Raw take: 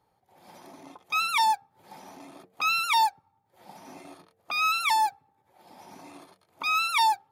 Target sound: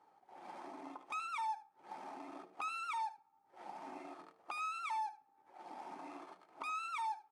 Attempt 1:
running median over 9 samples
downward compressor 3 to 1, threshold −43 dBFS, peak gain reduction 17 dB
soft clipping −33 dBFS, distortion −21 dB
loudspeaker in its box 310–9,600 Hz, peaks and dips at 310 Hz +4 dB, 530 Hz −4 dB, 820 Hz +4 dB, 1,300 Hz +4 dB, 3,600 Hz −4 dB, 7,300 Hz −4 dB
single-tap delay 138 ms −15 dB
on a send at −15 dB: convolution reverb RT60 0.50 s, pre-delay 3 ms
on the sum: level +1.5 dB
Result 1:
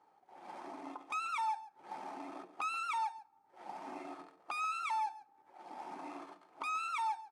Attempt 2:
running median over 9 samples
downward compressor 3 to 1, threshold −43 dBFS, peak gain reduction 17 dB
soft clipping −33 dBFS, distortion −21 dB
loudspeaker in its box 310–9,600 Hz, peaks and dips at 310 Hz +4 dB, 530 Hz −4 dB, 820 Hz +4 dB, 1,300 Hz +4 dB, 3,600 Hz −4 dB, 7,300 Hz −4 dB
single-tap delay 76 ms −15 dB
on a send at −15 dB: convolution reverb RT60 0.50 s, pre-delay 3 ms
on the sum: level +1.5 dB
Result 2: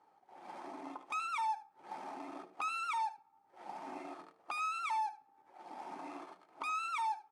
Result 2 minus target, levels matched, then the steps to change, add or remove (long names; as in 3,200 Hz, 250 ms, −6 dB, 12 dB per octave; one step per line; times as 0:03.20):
downward compressor: peak gain reduction −4.5 dB
change: downward compressor 3 to 1, threshold −49.5 dBFS, peak gain reduction 21 dB